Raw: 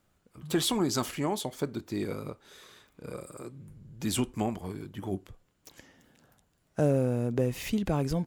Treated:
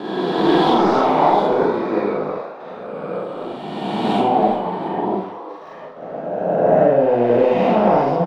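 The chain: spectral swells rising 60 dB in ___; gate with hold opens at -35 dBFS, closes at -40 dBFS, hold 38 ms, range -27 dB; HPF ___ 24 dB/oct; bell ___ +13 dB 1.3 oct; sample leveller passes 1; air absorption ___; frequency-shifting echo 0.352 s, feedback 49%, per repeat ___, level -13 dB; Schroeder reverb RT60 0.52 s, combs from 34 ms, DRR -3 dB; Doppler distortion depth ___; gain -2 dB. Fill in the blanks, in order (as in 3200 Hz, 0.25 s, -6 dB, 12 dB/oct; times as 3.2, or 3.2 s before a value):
2.33 s, 160 Hz, 750 Hz, 350 m, +110 Hz, 0.11 ms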